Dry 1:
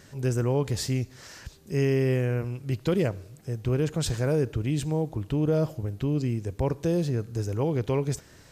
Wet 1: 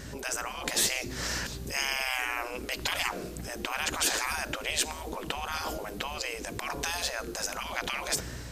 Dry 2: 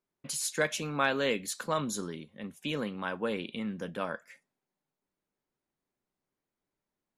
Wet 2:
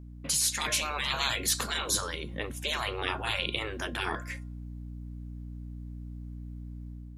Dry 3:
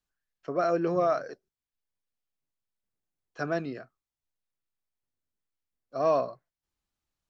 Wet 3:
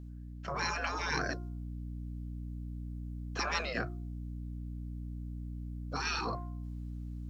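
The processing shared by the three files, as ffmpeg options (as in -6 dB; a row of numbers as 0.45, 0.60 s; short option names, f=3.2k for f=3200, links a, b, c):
-af "aeval=exprs='val(0)+0.00251*(sin(2*PI*60*n/s)+sin(2*PI*2*60*n/s)/2+sin(2*PI*3*60*n/s)/3+sin(2*PI*4*60*n/s)/4+sin(2*PI*5*60*n/s)/5)':c=same,bandreject=f=352.1:t=h:w=4,bandreject=f=704.2:t=h:w=4,bandreject=f=1.0563k:t=h:w=4,bandreject=f=1.4084k:t=h:w=4,dynaudnorm=f=430:g=3:m=5dB,afftfilt=real='re*lt(hypot(re,im),0.0631)':imag='im*lt(hypot(re,im),0.0631)':win_size=1024:overlap=0.75,volume=8dB"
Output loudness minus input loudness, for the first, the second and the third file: -3.5, +3.0, -9.0 LU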